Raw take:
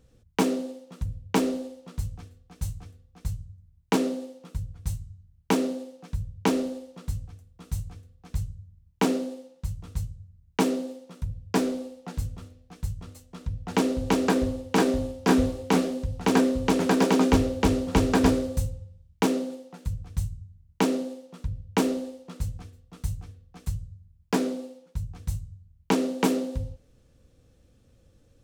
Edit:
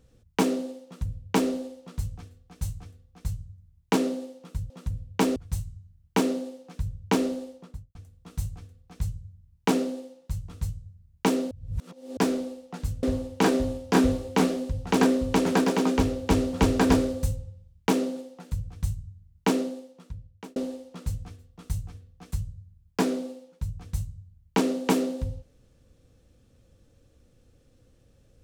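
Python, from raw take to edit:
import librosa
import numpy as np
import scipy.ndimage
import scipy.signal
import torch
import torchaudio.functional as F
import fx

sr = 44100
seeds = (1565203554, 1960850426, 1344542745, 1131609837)

y = fx.studio_fade_out(x, sr, start_s=6.82, length_s=0.47)
y = fx.edit(y, sr, fx.duplicate(start_s=0.85, length_s=0.66, to_s=4.7),
    fx.reverse_span(start_s=10.85, length_s=0.66),
    fx.cut(start_s=12.37, length_s=2.0),
    fx.clip_gain(start_s=16.98, length_s=0.66, db=-3.0),
    fx.fade_out_span(start_s=20.87, length_s=1.03), tone=tone)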